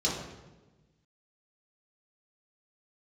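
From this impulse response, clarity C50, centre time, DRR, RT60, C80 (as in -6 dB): 2.5 dB, 57 ms, -6.5 dB, 1.2 s, 5.0 dB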